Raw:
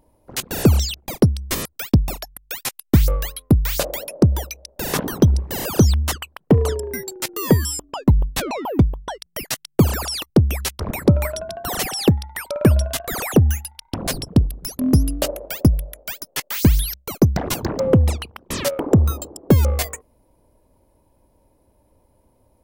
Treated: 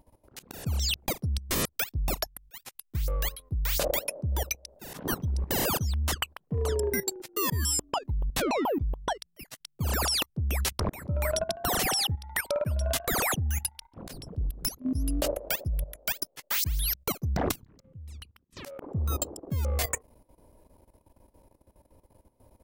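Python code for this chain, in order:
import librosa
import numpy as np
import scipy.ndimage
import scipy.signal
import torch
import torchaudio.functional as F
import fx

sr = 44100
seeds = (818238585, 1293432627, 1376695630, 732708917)

y = fx.auto_swell(x, sr, attack_ms=229.0)
y = fx.tone_stack(y, sr, knobs='6-0-2', at=(17.51, 18.57))
y = fx.level_steps(y, sr, step_db=15)
y = F.gain(torch.from_numpy(y), 3.0).numpy()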